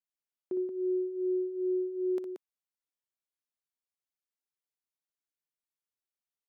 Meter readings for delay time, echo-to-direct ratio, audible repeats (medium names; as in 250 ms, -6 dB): 60 ms, -4.5 dB, 2